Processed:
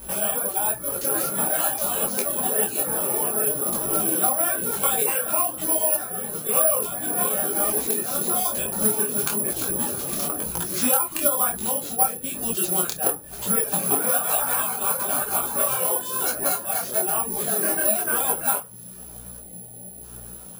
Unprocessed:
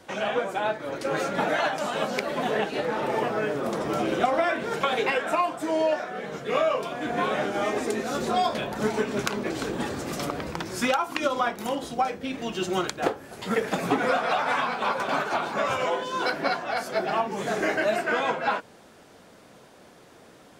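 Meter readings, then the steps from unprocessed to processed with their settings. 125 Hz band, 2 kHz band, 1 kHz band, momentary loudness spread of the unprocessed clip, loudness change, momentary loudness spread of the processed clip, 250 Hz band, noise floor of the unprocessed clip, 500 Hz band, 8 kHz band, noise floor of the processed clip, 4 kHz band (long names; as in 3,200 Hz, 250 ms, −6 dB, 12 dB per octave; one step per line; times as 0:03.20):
0.0 dB, −5.0 dB, −2.5 dB, 6 LU, +5.5 dB, 7 LU, −2.0 dB, −52 dBFS, −2.5 dB, +20.5 dB, −41 dBFS, −1.5 dB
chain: parametric band 2,000 Hz −14.5 dB 0.21 octaves
hum with harmonics 60 Hz, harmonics 4, −51 dBFS −4 dB per octave
in parallel at +0.5 dB: downward compressor, threshold −36 dBFS, peak gain reduction 17.5 dB
on the sum: dynamic equaliser 7,300 Hz, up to +3 dB, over −50 dBFS, Q 1.7
gain on a spectral selection 0:19.39–0:20.03, 880–6,200 Hz −25 dB
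backwards echo 106 ms −21.5 dB
rectangular room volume 430 cubic metres, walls furnished, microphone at 1.2 metres
reverb reduction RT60 0.68 s
bad sample-rate conversion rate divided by 4×, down none, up zero stuff
micro pitch shift up and down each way 36 cents
level −1 dB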